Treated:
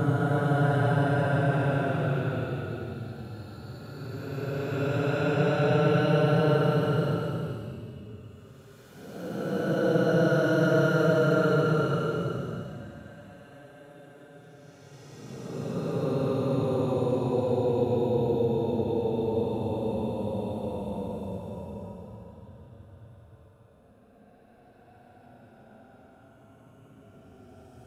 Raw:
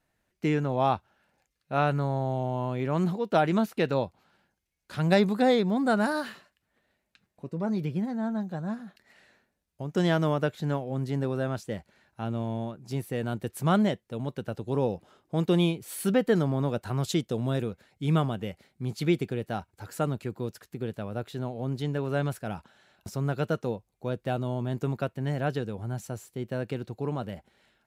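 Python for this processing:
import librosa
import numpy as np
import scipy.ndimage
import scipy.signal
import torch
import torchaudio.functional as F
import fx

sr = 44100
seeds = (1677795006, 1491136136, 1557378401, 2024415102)

y = fx.echo_swing(x, sr, ms=1400, ratio=1.5, feedback_pct=48, wet_db=-22.0)
y = fx.paulstretch(y, sr, seeds[0], factor=44.0, window_s=0.05, from_s=23.28)
y = y * 10.0 ** (2.0 / 20.0)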